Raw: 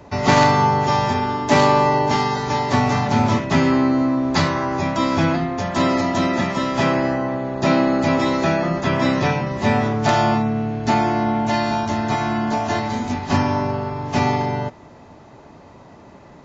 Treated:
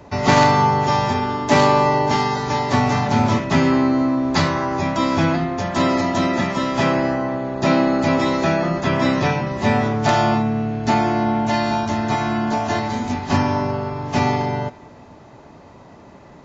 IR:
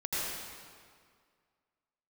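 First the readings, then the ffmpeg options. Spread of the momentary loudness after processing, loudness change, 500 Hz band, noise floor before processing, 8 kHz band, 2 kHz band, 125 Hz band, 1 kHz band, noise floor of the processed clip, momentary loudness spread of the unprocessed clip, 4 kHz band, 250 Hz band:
6 LU, +0.5 dB, +0.5 dB, -44 dBFS, n/a, 0.0 dB, 0.0 dB, 0.0 dB, -44 dBFS, 6 LU, +0.5 dB, +0.5 dB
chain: -filter_complex "[0:a]asplit=2[a][b];[1:a]atrim=start_sample=2205[c];[b][c]afir=irnorm=-1:irlink=0,volume=-27.5dB[d];[a][d]amix=inputs=2:normalize=0"

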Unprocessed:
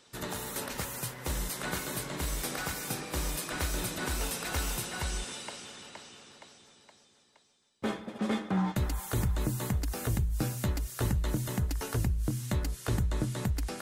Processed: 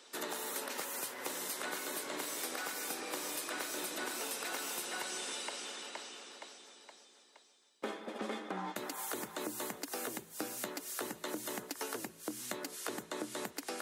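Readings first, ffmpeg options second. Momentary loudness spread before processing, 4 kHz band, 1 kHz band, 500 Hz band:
7 LU, -2.5 dB, -2.5 dB, -3.0 dB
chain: -af "highpass=f=280:w=0.5412,highpass=f=280:w=1.3066,acompressor=threshold=-39dB:ratio=6,volume=2.5dB"

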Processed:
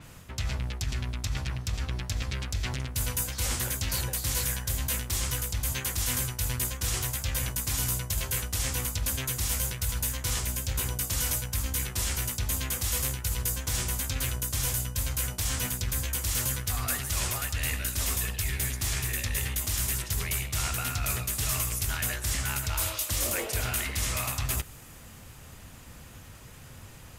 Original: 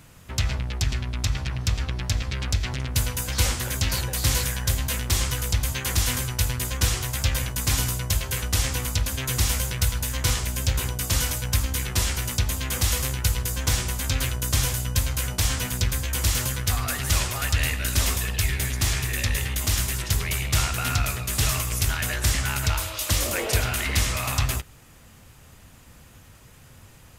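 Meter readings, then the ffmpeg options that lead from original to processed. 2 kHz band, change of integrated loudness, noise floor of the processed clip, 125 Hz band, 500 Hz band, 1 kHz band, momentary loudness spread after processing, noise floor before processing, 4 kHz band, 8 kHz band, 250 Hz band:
-6.0 dB, -4.5 dB, -48 dBFS, -7.0 dB, -6.0 dB, -6.0 dB, 6 LU, -50 dBFS, -6.5 dB, -3.0 dB, -6.0 dB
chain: -af "areverse,acompressor=threshold=-30dB:ratio=6,areverse,adynamicequalizer=threshold=0.00282:dfrequency=6800:dqfactor=0.7:tfrequency=6800:tqfactor=0.7:attack=5:release=100:ratio=0.375:range=3:mode=boostabove:tftype=highshelf,volume=2dB"

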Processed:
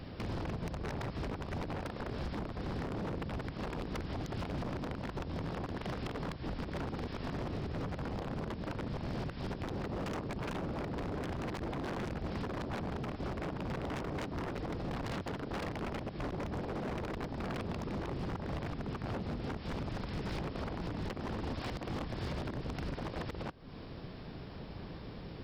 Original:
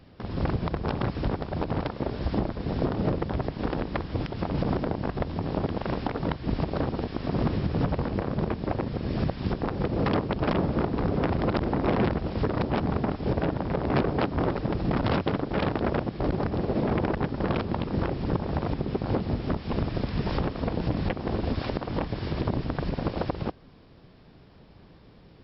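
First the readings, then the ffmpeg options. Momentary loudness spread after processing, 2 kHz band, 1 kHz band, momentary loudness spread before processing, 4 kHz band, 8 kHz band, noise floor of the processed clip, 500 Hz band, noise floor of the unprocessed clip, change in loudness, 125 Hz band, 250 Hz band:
2 LU, -7.5 dB, -10.0 dB, 5 LU, -7.0 dB, n/a, -46 dBFS, -11.5 dB, -52 dBFS, -11.0 dB, -10.5 dB, -11.0 dB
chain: -af "acompressor=threshold=-40dB:ratio=6,aeval=exprs='0.0112*(abs(mod(val(0)/0.0112+3,4)-2)-1)':c=same,volume=7dB"

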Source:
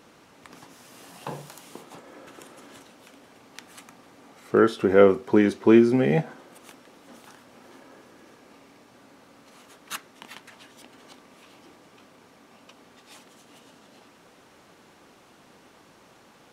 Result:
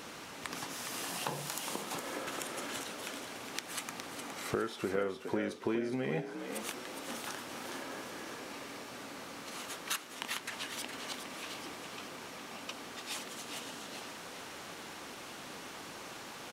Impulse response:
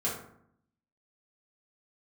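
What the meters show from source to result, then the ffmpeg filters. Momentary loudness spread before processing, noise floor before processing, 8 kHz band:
21 LU, -55 dBFS, +7.0 dB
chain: -filter_complex "[0:a]tiltshelf=f=1.1k:g=-3.5,acompressor=threshold=-42dB:ratio=5,asplit=5[a][b][c][d][e];[b]adelay=413,afreqshift=56,volume=-8dB[f];[c]adelay=826,afreqshift=112,volume=-16.9dB[g];[d]adelay=1239,afreqshift=168,volume=-25.7dB[h];[e]adelay=1652,afreqshift=224,volume=-34.6dB[i];[a][f][g][h][i]amix=inputs=5:normalize=0,volume=7.5dB"

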